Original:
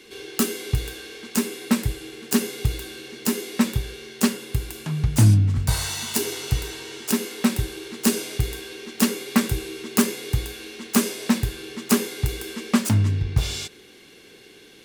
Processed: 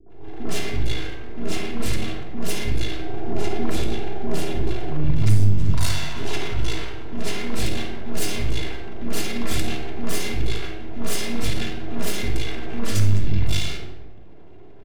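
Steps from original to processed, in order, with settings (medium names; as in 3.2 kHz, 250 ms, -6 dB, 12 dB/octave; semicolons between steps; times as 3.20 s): level-controlled noise filter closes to 680 Hz, open at -15 dBFS; 2.94–4.95 s: peaking EQ 370 Hz +12 dB 0.84 oct; compression, threshold -23 dBFS, peak gain reduction 13 dB; transient shaper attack -8 dB, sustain +9 dB; half-wave rectifier; three bands offset in time lows, mids, highs 60/100 ms, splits 360/1200 Hz; simulated room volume 2900 m³, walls furnished, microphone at 3.1 m; trim +4.5 dB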